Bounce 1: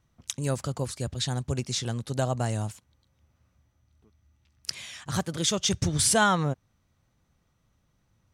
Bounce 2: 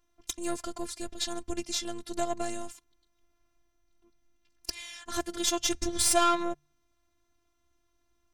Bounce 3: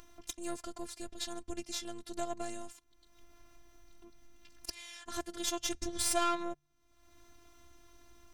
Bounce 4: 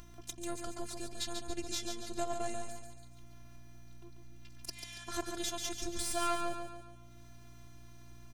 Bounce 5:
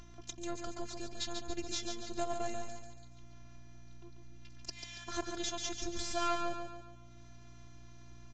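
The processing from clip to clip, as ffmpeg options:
-af "aeval=exprs='(tanh(5.62*val(0)+0.65)-tanh(0.65))/5.62':c=same,afftfilt=real='hypot(re,im)*cos(PI*b)':imag='0':win_size=512:overlap=0.75,bandreject=f=73.26:t=h:w=4,bandreject=f=146.52:t=h:w=4,volume=5dB"
-af "aeval=exprs='if(lt(val(0),0),0.708*val(0),val(0))':c=same,acompressor=mode=upward:threshold=-32dB:ratio=2.5,volume=-6.5dB"
-af "alimiter=limit=-19.5dB:level=0:latency=1:release=333,aeval=exprs='val(0)+0.00158*(sin(2*PI*60*n/s)+sin(2*PI*2*60*n/s)/2+sin(2*PI*3*60*n/s)/3+sin(2*PI*4*60*n/s)/4+sin(2*PI*5*60*n/s)/5)':c=same,aecho=1:1:141|282|423|564|705|846:0.501|0.231|0.106|0.0488|0.0224|0.0103,volume=1dB"
-ar 16000 -c:a libvorbis -b:a 96k

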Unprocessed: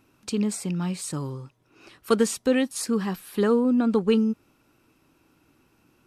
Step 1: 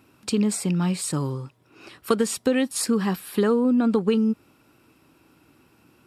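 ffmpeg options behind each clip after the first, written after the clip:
-af "highpass=59,bandreject=f=6.2k:w=9.3,acompressor=threshold=-22dB:ratio=6,volume=5dB"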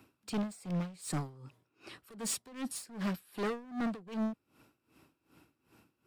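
-filter_complex "[0:a]acrossover=split=140|480|3900[a][b][c][d];[c]alimiter=limit=-21dB:level=0:latency=1:release=188[e];[a][b][e][d]amix=inputs=4:normalize=0,asoftclip=type=hard:threshold=-26.5dB,aeval=exprs='val(0)*pow(10,-21*(0.5-0.5*cos(2*PI*2.6*n/s))/20)':c=same,volume=-3dB"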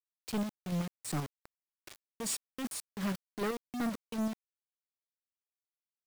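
-af "acrusher=bits=6:mix=0:aa=0.000001"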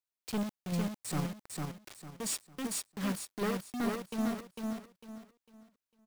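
-af "aecho=1:1:451|902|1353|1804:0.668|0.201|0.0602|0.018"

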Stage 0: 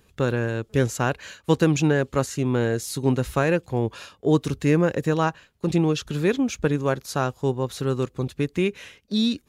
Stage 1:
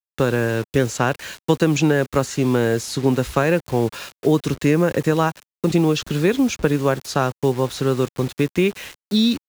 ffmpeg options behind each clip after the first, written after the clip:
-filter_complex "[0:a]acrusher=bits=6:mix=0:aa=0.000001,acrossover=split=170|7100[a][b][c];[a]acompressor=threshold=-34dB:ratio=4[d];[b]acompressor=threshold=-20dB:ratio=4[e];[c]acompressor=threshold=-48dB:ratio=4[f];[d][e][f]amix=inputs=3:normalize=0,volume=6.5dB"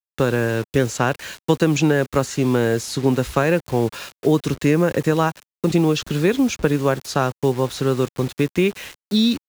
-af anull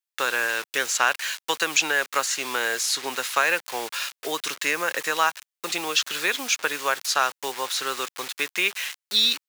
-af "highpass=1.3k,volume=5.5dB"

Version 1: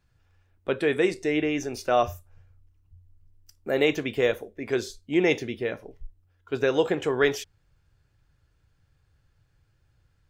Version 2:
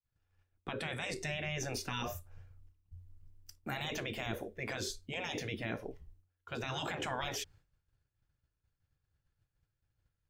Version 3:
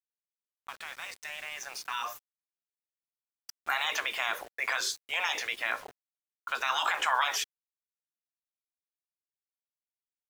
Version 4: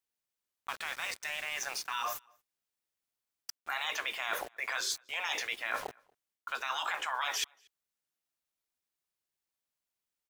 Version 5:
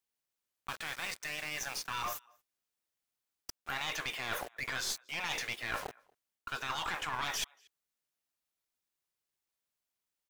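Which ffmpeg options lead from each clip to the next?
-filter_complex "[0:a]afftfilt=real='re*lt(hypot(re,im),0.112)':imag='im*lt(hypot(re,im),0.112)':win_size=1024:overlap=0.75,agate=range=-33dB:threshold=-53dB:ratio=3:detection=peak,acrossover=split=750[a][b];[b]alimiter=level_in=6dB:limit=-24dB:level=0:latency=1:release=143,volume=-6dB[c];[a][c]amix=inputs=2:normalize=0,volume=1dB"
-af "dynaudnorm=f=380:g=13:m=12dB,highpass=f=1.1k:t=q:w=2.4,aeval=exprs='val(0)*gte(abs(val(0)),0.00841)':c=same,volume=-3.5dB"
-filter_complex "[0:a]areverse,acompressor=threshold=-38dB:ratio=6,areverse,asplit=2[a][b];[b]adelay=233.2,volume=-29dB,highshelf=f=4k:g=-5.25[c];[a][c]amix=inputs=2:normalize=0,volume=6dB"
-af "aeval=exprs='clip(val(0),-1,0.015)':c=same"

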